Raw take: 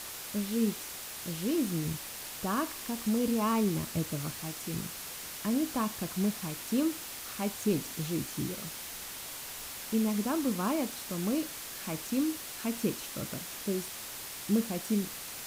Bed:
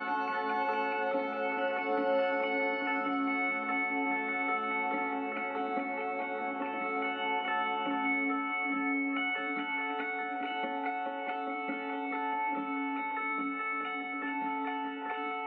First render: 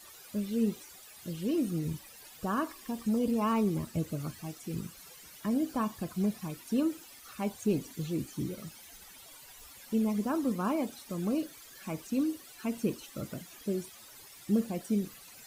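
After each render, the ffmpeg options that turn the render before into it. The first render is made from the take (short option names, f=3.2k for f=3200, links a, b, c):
-af "afftdn=nr=15:nf=-42"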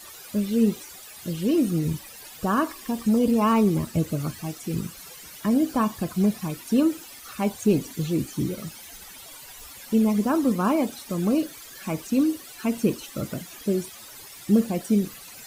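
-af "volume=8.5dB"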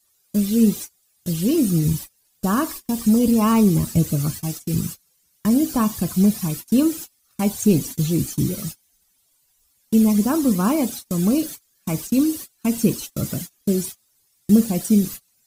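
-af "agate=range=-30dB:threshold=-36dB:ratio=16:detection=peak,bass=f=250:g=8,treble=f=4k:g=11"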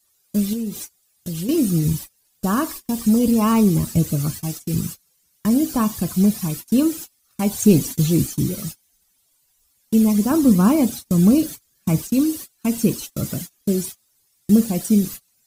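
-filter_complex "[0:a]asettb=1/sr,asplit=3[a][b][c];[a]atrim=end=0.534[d];[b]atrim=start=0.53:end=1.49,asetpts=PTS-STARTPTS,afade=t=in:d=0.004:c=qsin,afade=t=out:st=0.956:d=0.004:c=qsin,acompressor=threshold=-23dB:ratio=6:attack=3.2:release=140:knee=1:detection=peak[e];[c]atrim=start=1.486[f];[d][e]acrossfade=d=0.004:c1=hsin:c2=qsin[g];[g][f]acrossfade=d=0.004:c1=qsin:c2=hsin,asettb=1/sr,asplit=3[h][i][j];[h]atrim=end=10.314[k];[i]atrim=start=10.31:end=12.02,asetpts=PTS-STARTPTS,afade=t=in:d=0.004:c=qsin,afade=t=out:st=1.706:d=0.004:c=qsin,equalizer=f=92:w=0.38:g=8[l];[j]atrim=start=12.016[m];[k][l]acrossfade=d=0.004:c1=hsin:c2=qsin[n];[n][m]acrossfade=d=0.004:c1=qsin:c2=hsin,asplit=3[o][p][q];[o]atrim=end=7.522[r];[p]atrim=start=7.518:end=8.272,asetpts=PTS-STARTPTS,volume=3dB[s];[q]atrim=start=8.268[t];[r][s]acrossfade=d=0.004:c1=hsin:c2=hsin[u];[u][t]acrossfade=d=0.004:c1=hsin:c2=hsin"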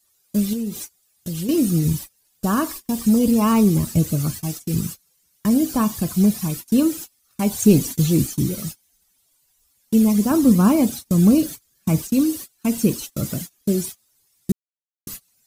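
-filter_complex "[0:a]asplit=3[a][b][c];[a]atrim=end=14.52,asetpts=PTS-STARTPTS,afade=t=out:st=14.516:d=0.004:c=hsin[d];[b]atrim=start=14.52:end=15.07,asetpts=PTS-STARTPTS,volume=0[e];[c]atrim=start=15.07,asetpts=PTS-STARTPTS,afade=t=in:d=0.004:c=hsin[f];[d][e][f]concat=n=3:v=0:a=1"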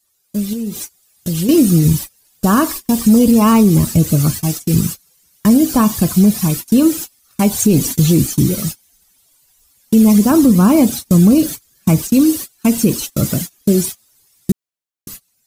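-af "alimiter=limit=-11.5dB:level=0:latency=1:release=104,dynaudnorm=f=120:g=13:m=10.5dB"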